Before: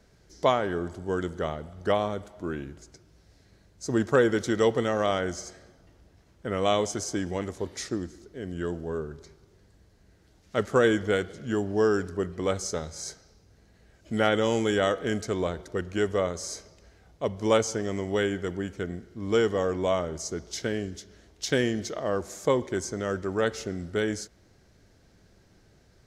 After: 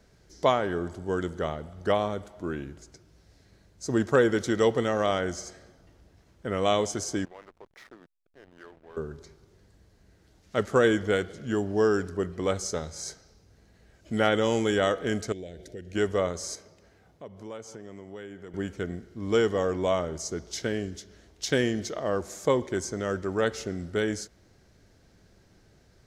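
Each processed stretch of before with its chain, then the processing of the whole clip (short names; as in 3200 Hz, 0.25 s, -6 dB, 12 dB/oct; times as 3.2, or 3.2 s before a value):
7.25–8.97 BPF 790–2400 Hz + compressor 2:1, threshold -46 dBFS + backlash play -45 dBFS
15.32–15.95 compressor 2.5:1, threshold -40 dBFS + Butterworth band-stop 1100 Hz, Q 0.98
16.55–18.54 bell 5800 Hz -4.5 dB 2.3 oct + compressor 2.5:1, threshold -45 dBFS + HPF 97 Hz
whole clip: dry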